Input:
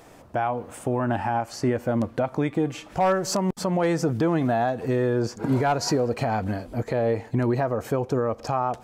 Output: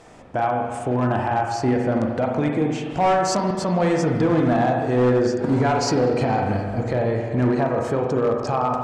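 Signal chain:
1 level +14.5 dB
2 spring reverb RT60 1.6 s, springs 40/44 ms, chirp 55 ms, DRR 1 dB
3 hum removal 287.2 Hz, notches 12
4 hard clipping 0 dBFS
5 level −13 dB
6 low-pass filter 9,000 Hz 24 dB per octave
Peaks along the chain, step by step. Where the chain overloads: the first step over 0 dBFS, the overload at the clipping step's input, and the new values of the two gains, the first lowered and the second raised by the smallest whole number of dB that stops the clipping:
+0.5, +9.0, +9.0, 0.0, −13.0, −12.0 dBFS
step 1, 9.0 dB
step 1 +5.5 dB, step 5 −4 dB

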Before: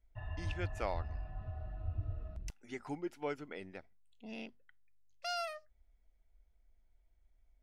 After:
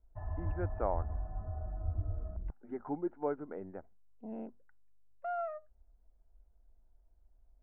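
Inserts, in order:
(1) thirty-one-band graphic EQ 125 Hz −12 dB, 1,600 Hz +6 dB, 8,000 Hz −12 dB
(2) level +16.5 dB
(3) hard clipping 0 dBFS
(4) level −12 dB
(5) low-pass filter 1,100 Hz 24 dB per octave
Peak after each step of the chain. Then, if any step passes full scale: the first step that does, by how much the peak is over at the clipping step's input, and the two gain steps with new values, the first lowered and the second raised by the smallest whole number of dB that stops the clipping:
−21.5, −5.0, −5.0, −17.0, −19.0 dBFS
no step passes full scale

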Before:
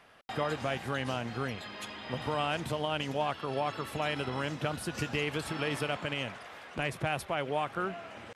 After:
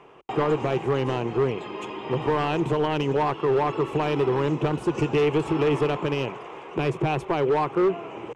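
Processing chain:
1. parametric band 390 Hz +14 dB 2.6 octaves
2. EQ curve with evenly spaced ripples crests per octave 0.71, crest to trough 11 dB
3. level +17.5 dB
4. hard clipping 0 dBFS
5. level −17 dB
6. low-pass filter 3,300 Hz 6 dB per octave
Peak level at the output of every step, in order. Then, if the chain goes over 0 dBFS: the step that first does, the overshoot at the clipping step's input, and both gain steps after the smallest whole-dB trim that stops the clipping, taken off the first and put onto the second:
−9.0, −8.0, +9.5, 0.0, −17.0, −17.0 dBFS
step 3, 9.5 dB
step 3 +7.5 dB, step 5 −7 dB

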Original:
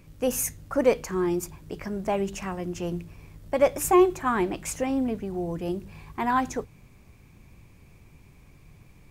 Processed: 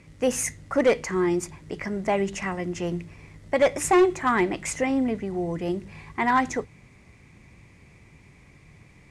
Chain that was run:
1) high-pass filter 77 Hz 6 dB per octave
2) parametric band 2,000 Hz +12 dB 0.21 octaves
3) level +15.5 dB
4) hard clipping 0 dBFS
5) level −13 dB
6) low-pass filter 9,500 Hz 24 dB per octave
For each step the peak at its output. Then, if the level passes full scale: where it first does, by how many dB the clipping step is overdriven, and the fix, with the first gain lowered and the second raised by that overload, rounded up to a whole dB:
−8.5, −7.5, +8.0, 0.0, −13.0, −12.5 dBFS
step 3, 8.0 dB
step 3 +7.5 dB, step 5 −5 dB

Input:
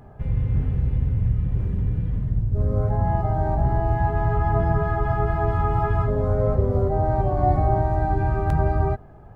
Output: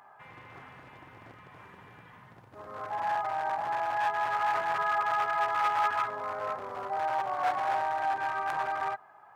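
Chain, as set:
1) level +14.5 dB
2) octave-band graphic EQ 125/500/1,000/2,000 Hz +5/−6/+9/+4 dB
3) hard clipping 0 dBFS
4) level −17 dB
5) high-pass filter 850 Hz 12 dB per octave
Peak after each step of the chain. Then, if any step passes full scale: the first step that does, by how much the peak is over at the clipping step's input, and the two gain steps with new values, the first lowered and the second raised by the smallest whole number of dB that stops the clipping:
+7.0, +10.0, 0.0, −17.0, −15.0 dBFS
step 1, 10.0 dB
step 1 +4.5 dB, step 4 −7 dB

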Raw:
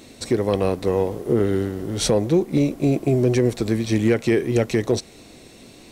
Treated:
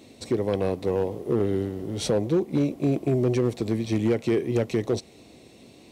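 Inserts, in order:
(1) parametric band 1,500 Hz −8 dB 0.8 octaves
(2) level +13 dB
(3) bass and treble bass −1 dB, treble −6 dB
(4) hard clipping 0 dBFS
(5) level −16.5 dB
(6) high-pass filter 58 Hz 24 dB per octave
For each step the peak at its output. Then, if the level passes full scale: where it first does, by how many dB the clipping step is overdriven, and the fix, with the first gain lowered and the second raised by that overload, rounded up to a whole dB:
−8.5, +4.5, +4.0, 0.0, −16.5, −12.0 dBFS
step 2, 4.0 dB
step 2 +9 dB, step 5 −12.5 dB

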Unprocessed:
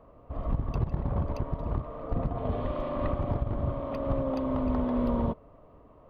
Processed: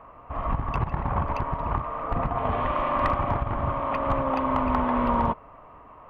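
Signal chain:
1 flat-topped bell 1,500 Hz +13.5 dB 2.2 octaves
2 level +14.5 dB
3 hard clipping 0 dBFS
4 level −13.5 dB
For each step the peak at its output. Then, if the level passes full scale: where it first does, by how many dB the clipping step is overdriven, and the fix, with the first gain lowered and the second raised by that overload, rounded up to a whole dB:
−10.5, +4.0, 0.0, −13.5 dBFS
step 2, 4.0 dB
step 2 +10.5 dB, step 4 −9.5 dB

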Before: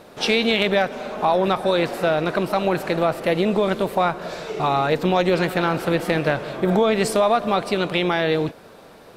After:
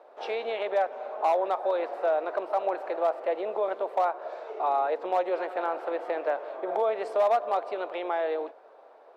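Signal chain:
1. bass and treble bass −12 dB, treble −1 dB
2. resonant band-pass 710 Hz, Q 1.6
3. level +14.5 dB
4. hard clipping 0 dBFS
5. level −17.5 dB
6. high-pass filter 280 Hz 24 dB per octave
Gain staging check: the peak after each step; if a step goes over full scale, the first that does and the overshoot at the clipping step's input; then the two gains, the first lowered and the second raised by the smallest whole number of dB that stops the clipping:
−6.5, −10.0, +4.5, 0.0, −17.5, −14.5 dBFS
step 3, 4.5 dB
step 3 +9.5 dB, step 5 −12.5 dB

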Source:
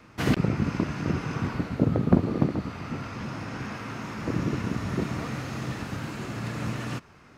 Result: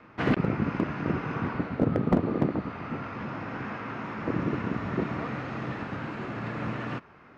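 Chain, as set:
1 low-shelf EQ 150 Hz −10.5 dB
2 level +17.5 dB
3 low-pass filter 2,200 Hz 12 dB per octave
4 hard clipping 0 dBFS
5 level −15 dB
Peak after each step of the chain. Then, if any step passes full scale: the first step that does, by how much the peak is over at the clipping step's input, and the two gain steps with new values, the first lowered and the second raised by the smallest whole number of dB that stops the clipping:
−8.0, +9.5, +9.5, 0.0, −15.0 dBFS
step 2, 9.5 dB
step 2 +7.5 dB, step 5 −5 dB

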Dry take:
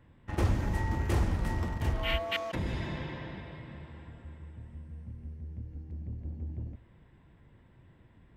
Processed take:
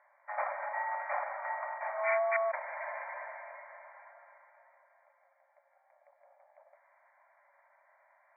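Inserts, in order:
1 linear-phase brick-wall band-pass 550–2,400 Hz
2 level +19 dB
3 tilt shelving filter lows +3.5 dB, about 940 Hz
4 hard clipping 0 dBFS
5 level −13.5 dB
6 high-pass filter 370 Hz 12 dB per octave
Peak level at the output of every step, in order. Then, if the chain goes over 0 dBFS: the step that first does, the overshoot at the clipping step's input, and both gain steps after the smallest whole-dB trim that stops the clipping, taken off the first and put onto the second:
−22.0, −3.0, −3.5, −3.5, −17.0, −17.5 dBFS
no step passes full scale

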